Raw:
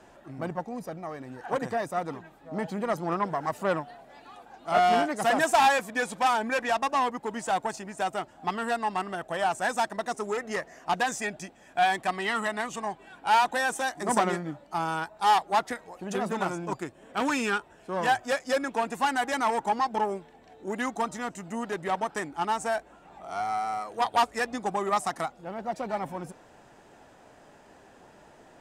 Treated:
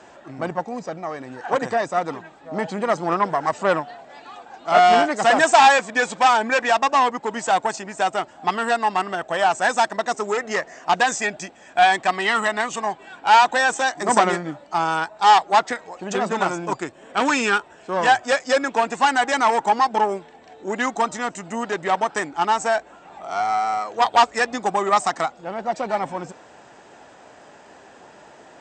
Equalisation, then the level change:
high-pass filter 51 Hz
linear-phase brick-wall low-pass 8,400 Hz
low-shelf EQ 240 Hz −9 dB
+9.0 dB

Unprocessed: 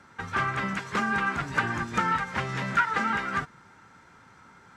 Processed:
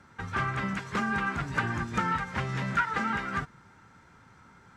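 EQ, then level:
low-shelf EQ 170 Hz +8.5 dB
−3.5 dB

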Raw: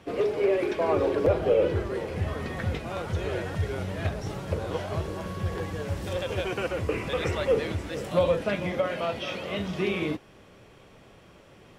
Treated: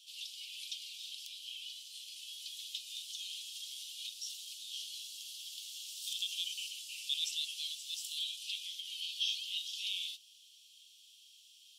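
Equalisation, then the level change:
Butterworth high-pass 3,000 Hz 72 dB per octave
+6.0 dB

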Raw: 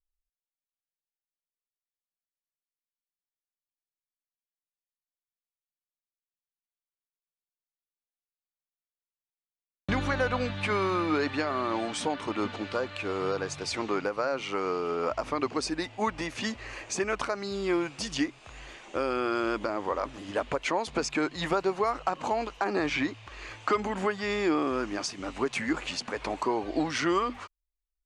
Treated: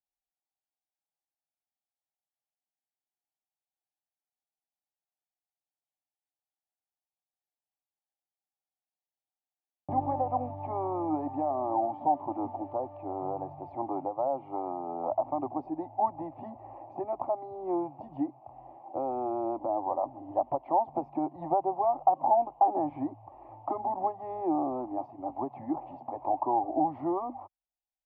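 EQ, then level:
high-pass filter 63 Hz
transistor ladder low-pass 870 Hz, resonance 70%
phaser with its sweep stopped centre 300 Hz, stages 8
+8.5 dB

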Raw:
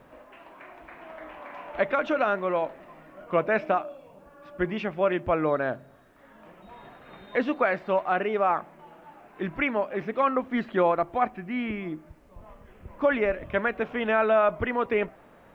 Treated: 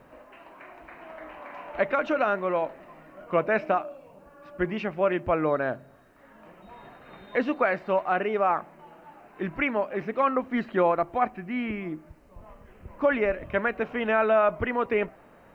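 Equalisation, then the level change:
notch filter 3,400 Hz, Q 10
0.0 dB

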